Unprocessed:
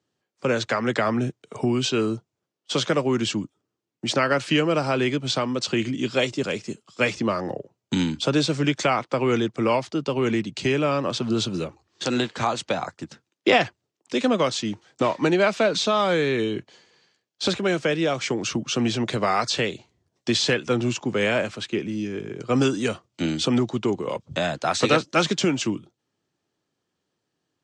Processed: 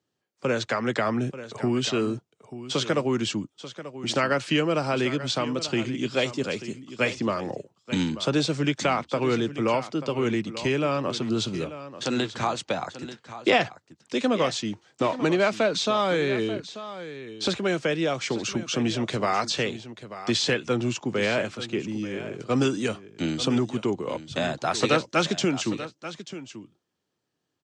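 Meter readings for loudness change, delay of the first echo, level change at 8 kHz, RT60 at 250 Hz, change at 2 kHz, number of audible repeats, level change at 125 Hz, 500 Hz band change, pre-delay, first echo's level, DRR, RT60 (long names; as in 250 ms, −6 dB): −2.5 dB, 887 ms, −2.5 dB, no reverb audible, −2.5 dB, 1, −2.5 dB, −2.5 dB, no reverb audible, −13.5 dB, no reverb audible, no reverb audible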